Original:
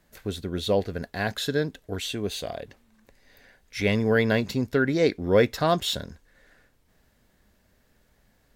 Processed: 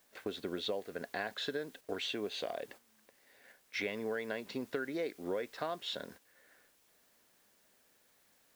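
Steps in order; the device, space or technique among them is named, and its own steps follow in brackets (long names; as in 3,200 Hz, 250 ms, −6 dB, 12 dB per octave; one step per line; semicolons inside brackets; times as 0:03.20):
baby monitor (band-pass filter 330–3,600 Hz; downward compressor 10 to 1, threshold −35 dBFS, peak gain reduction 20 dB; white noise bed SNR 22 dB; noise gate −54 dBFS, range −7 dB)
level +1 dB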